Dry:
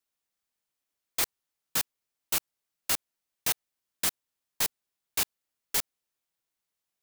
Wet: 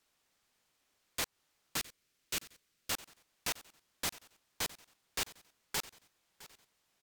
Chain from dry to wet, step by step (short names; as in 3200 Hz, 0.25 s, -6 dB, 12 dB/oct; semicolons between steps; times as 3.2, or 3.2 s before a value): compressor, threshold -30 dBFS, peak gain reduction 8 dB; limiter -25 dBFS, peak gain reduction 9 dB; sine folder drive 9 dB, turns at -25 dBFS; high shelf 7800 Hz -5.5 dB; feedback echo 0.661 s, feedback 39%, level -18.5 dB; careless resampling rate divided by 2×, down filtered, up hold; 1.77–2.91 bell 850 Hz -9.5 dB 0.97 oct